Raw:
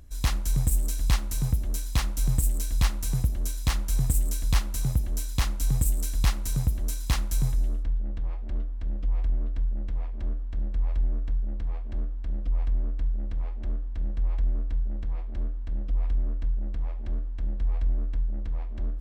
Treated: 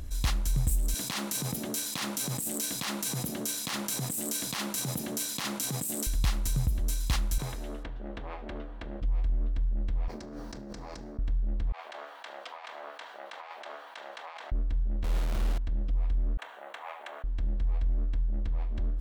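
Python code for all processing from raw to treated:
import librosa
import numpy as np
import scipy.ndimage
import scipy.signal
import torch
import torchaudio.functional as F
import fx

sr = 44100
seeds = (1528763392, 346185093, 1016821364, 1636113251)

y = fx.chain(x, sr, fx.highpass(hz=180.0, slope=24),
    fx.over_compress(threshold_db=-37.0, ratio=-1.0), at=(0.94, 6.07))
y = fx.chain(y, sr, fx.highpass(hz=120.0, slope=6),
    fx.bass_treble(bass_db=-13, treble_db=-9), at=(7.38, 9.02))
y = fx.chain(y, sr, fx.highpass(hz=230.0, slope=12),
    fx.high_shelf_res(hz=4100.0, db=8.0, q=3.0),
    fx.over_compress(threshold_db=-55.0, ratio=-1.0), at=(10.08, 11.19))
y = fx.chain(y, sr, fx.highpass(hz=730.0, slope=24),
    fx.over_compress(threshold_db=-57.0, ratio=-0.5), at=(11.72, 14.52))
y = fx.chain(y, sr, fx.savgol(points=65),
    fx.quant_dither(seeds[0], bits=6, dither='none'),
    fx.doubler(ms=50.0, db=-2), at=(15.04, 15.58))
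y = fx.chain(y, sr, fx.highpass(hz=730.0, slope=24),
    fx.quant_float(bits=4),
    fx.peak_eq(hz=4900.0, db=-12.0, octaves=0.64), at=(16.37, 17.24))
y = fx.peak_eq(y, sr, hz=3600.0, db=2.5, octaves=0.77)
y = fx.env_flatten(y, sr, amount_pct=50)
y = y * librosa.db_to_amplitude(-5.5)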